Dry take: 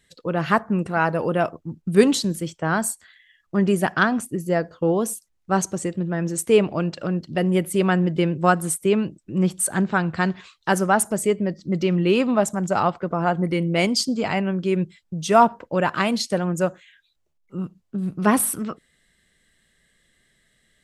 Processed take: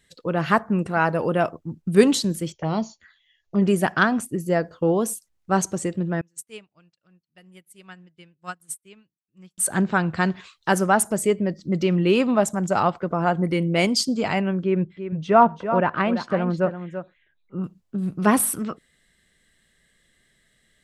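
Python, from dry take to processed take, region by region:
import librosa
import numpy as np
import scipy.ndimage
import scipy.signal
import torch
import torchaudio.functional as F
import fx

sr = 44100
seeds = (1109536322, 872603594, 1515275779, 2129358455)

y = fx.chain(x, sr, fx.env_phaser(low_hz=190.0, high_hz=1600.0, full_db=-23.5),
    fx.brickwall_lowpass(high_hz=7200.0),
    fx.doubler(ms=14.0, db=-12.0), at=(2.52, 3.62))
y = fx.chain(y, sr, fx.tone_stack(knobs='5-5-5'),
    fx.upward_expand(threshold_db=-49.0, expansion=2.5), at=(6.21, 9.58))
y = fx.chain(y, sr, fx.lowpass(hz=2100.0, slope=12),
    fx.echo_single(ms=337, db=-10.0), at=(14.63, 17.64))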